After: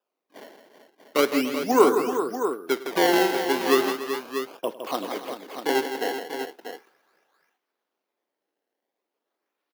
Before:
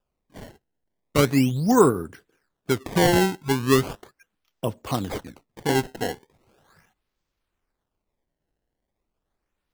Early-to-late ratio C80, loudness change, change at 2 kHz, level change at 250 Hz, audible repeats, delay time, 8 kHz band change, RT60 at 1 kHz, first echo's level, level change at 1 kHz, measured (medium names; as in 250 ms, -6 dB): no reverb, -1.5 dB, +1.5 dB, -3.5 dB, 6, 51 ms, -3.0 dB, no reverb, -19.5 dB, +1.5 dB